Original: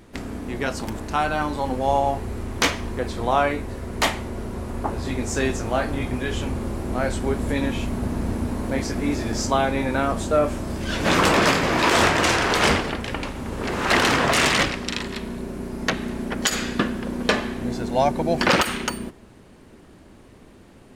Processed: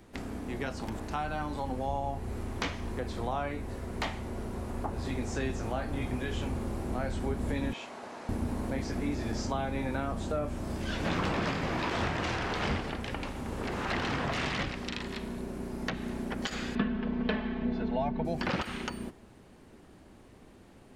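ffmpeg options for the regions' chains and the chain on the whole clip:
ffmpeg -i in.wav -filter_complex "[0:a]asettb=1/sr,asplit=3[link_01][link_02][link_03];[link_01]atrim=end=7.734[link_04];[link_02]atrim=start=7.73:end=8.29,asetpts=PTS-STARTPTS,afade=type=in:duration=0.004:curve=qsin,afade=type=out:start_time=0.556:duration=0.004:curve=qsin,highpass=180,acrossover=split=480 7700:gain=0.112 1 0.0794[link_05][link_06][link_07];[link_05][link_06][link_07]amix=inputs=3:normalize=0[link_08];[link_03]atrim=start=8.286[link_09];[link_04][link_08]acrossfade=duration=0.004:curve1=hsin:curve2=qsin[link_10];[link_10][link_09]acrossfade=duration=0.004:curve1=qsin:curve2=hsin,asettb=1/sr,asplit=3[link_11][link_12][link_13];[link_11]atrim=end=16.754[link_14];[link_12]atrim=start=16.75:end=18.25,asetpts=PTS-STARTPTS,afade=type=in:duration=0.004:curve=qsin,afade=type=out:start_time=1.496:duration=0.004:curve=qsin,lowpass=frequency=3500:width=0.5412,lowpass=frequency=3500:width=1.3066,aecho=1:1:4.6:0.86,atrim=end_sample=66150[link_15];[link_13]atrim=start=18.246[link_16];[link_14][link_15]acrossfade=duration=0.004:curve1=hsin:curve2=qsin[link_17];[link_17][link_16]acrossfade=duration=0.004:curve1=qsin:curve2=hsin,acrossover=split=5500[link_18][link_19];[link_19]acompressor=threshold=-45dB:ratio=4:attack=1:release=60[link_20];[link_18][link_20]amix=inputs=2:normalize=0,equalizer=frequency=780:width=5.2:gain=3,acrossover=split=220[link_21][link_22];[link_22]acompressor=threshold=-28dB:ratio=2.5[link_23];[link_21][link_23]amix=inputs=2:normalize=0,volume=-6.5dB" out.wav

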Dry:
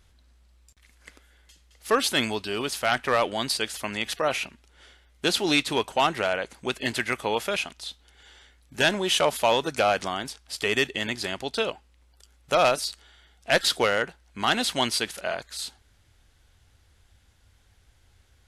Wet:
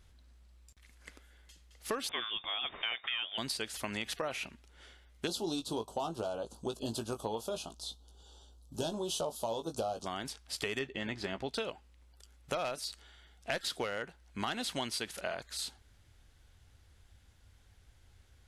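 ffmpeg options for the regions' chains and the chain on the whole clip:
ffmpeg -i in.wav -filter_complex "[0:a]asettb=1/sr,asplit=3[link_01][link_02][link_03];[link_01]atrim=end=2.094[link_04];[link_02]atrim=start=2.09:end=3.38,asetpts=PTS-STARTPTS,afade=type=in:duration=0.004:curve=qsin,afade=type=out:start_time=1.286:duration=0.004:curve=qsin,lowpass=frequency=3100:width_type=q:width=0.5098,lowpass=frequency=3100:width_type=q:width=0.6013,lowpass=frequency=3100:width_type=q:width=0.9,lowpass=frequency=3100:width_type=q:width=2.563,afreqshift=-3700,acompressor=mode=upward:threshold=-36dB:ratio=2.5:attack=3.2:release=140:knee=2.83:detection=peak[link_05];[link_03]atrim=start=3.376[link_06];[link_04][link_05]acrossfade=duration=0.004:curve1=hsin:curve2=qsin[link_07];[link_07][link_06]acrossfade=duration=0.004:curve1=qsin:curve2=hsin,asettb=1/sr,asplit=3[link_08][link_09][link_10];[link_08]atrim=end=5.274[link_11];[link_09]atrim=start=5.27:end=10.06,asetpts=PTS-STARTPTS,afade=type=in:duration=0.004:curve=qsin,afade=type=out:start_time=4.786:duration=0.004:curve=qsin,asuperstop=centerf=2000:order=4:qfactor=0.75,asplit=2[link_12][link_13];[link_13]adelay=18,volume=-7dB[link_14];[link_12][link_14]amix=inputs=2:normalize=0,atrim=end_sample=211239[link_15];[link_10]atrim=start=10.056[link_16];[link_11][link_15]acrossfade=duration=0.004:curve1=hsin:curve2=qsin[link_17];[link_17][link_16]acrossfade=duration=0.004:curve1=qsin:curve2=hsin,asettb=1/sr,asplit=3[link_18][link_19][link_20];[link_18]atrim=end=10.794[link_21];[link_19]atrim=start=10.79:end=11.49,asetpts=PTS-STARTPTS,afade=type=in:duration=0.004:curve=qsin,afade=type=out:start_time=0.696:duration=0.004:curve=qsin,aemphasis=mode=reproduction:type=75fm,asplit=2[link_22][link_23];[link_23]adelay=15,volume=-10dB[link_24];[link_22][link_24]amix=inputs=2:normalize=0,atrim=end_sample=30870[link_25];[link_20]atrim=start=11.486[link_26];[link_21][link_25]acrossfade=duration=0.004:curve1=hsin:curve2=qsin[link_27];[link_27][link_26]acrossfade=duration=0.004:curve1=qsin:curve2=hsin,lowshelf=frequency=330:gain=3,acompressor=threshold=-29dB:ratio=6,volume=-4dB" out.wav

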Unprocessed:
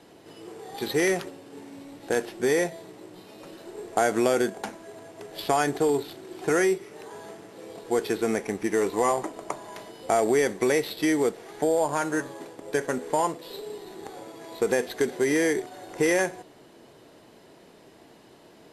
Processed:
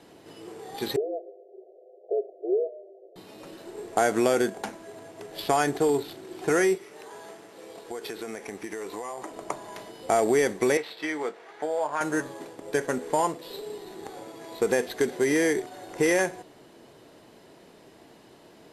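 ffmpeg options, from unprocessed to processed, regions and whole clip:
ffmpeg -i in.wav -filter_complex "[0:a]asettb=1/sr,asplit=3[link_01][link_02][link_03];[link_01]atrim=end=0.964[link_04];[link_02]atrim=start=0.96:end=3.16,asetpts=PTS-STARTPTS,afade=type=in:duration=0.004:curve=qsin,afade=type=out:start_time=2.196:duration=0.004:curve=qsin,asuperpass=centerf=560:order=20:qfactor=1.5,afreqshift=-48[link_05];[link_03]atrim=start=3.156[link_06];[link_04][link_05]acrossfade=duration=0.004:curve1=hsin:curve2=qsin[link_07];[link_07][link_06]acrossfade=duration=0.004:curve1=qsin:curve2=hsin,asettb=1/sr,asplit=3[link_08][link_09][link_10];[link_08]atrim=end=6.754[link_11];[link_09]atrim=start=6.75:end=9.32,asetpts=PTS-STARTPTS,afade=type=in:duration=0.004:curve=qsin,afade=type=out:start_time=2.566:duration=0.004:curve=qsin,lowshelf=frequency=260:gain=-10.5,acompressor=threshold=-31dB:ratio=10:attack=3.2:release=140:knee=1:detection=peak[link_12];[link_10]atrim=start=9.316[link_13];[link_11][link_12]acrossfade=duration=0.004:curve1=hsin:curve2=qsin[link_14];[link_14][link_13]acrossfade=duration=0.004:curve1=qsin:curve2=hsin,asettb=1/sr,asplit=3[link_15][link_16][link_17];[link_15]atrim=end=10.774[link_18];[link_16]atrim=start=10.77:end=12.01,asetpts=PTS-STARTPTS,afade=type=in:duration=0.004:curve=qsin,afade=type=out:start_time=1.236:duration=0.004:curve=qsin,bandpass=frequency=1400:width_type=q:width=0.72,asplit=2[link_19][link_20];[link_20]adelay=20,volume=-10.5dB[link_21];[link_19][link_21]amix=inputs=2:normalize=0,atrim=end_sample=54684[link_22];[link_17]atrim=start=12.006[link_23];[link_18][link_22]acrossfade=duration=0.004:curve1=hsin:curve2=qsin[link_24];[link_24][link_23]acrossfade=duration=0.004:curve1=qsin:curve2=hsin" out.wav

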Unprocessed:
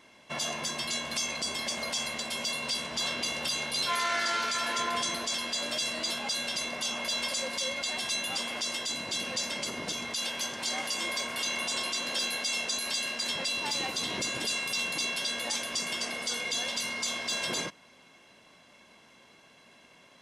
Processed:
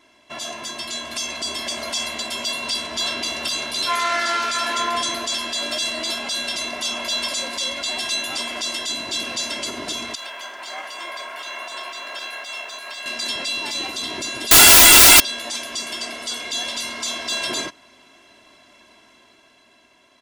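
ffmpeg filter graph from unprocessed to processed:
ffmpeg -i in.wav -filter_complex "[0:a]asettb=1/sr,asplit=3[link_01][link_02][link_03];[link_01]atrim=end=10.154[link_04];[link_02]atrim=start=10.15:end=13.06,asetpts=PTS-STARTPTS,afade=type=in:duration=0.004:curve=qsin,afade=type=out:start_time=2.906:duration=0.004:curve=qsin,highpass=320,acrossover=split=530 2500:gain=0.251 1 0.2[link_05][link_06][link_07];[link_05][link_06][link_07]amix=inputs=3:normalize=0,aeval=exprs='sgn(val(0))*max(abs(val(0))-0.001,0)':channel_layout=same[link_08];[link_03]atrim=start=13.056[link_09];[link_04][link_08]acrossfade=duration=0.004:curve1=hsin:curve2=qsin[link_10];[link_10][link_09]acrossfade=duration=0.004:curve1=qsin:curve2=hsin,asettb=1/sr,asplit=3[link_11][link_12][link_13];[link_11]atrim=end=14.514[link_14];[link_12]atrim=start=14.51:end=15.2,asetpts=PTS-STARTPTS,afade=type=in:duration=0.004:curve=qsin,afade=type=out:start_time=0.686:duration=0.004:curve=qsin,highpass=frequency=1000:poles=1,highshelf=frequency=1800:width_type=q:width=1.5:gain=9.5,aeval=exprs='0.355*sin(PI/2*8.91*val(0)/0.355)':channel_layout=same[link_15];[link_13]atrim=start=15.196[link_16];[link_14][link_15]acrossfade=duration=0.004:curve1=hsin:curve2=qsin[link_17];[link_17][link_16]acrossfade=duration=0.004:curve1=qsin:curve2=hsin,aecho=1:1:3:0.62,dynaudnorm=framelen=270:gausssize=9:maxgain=5dB" out.wav

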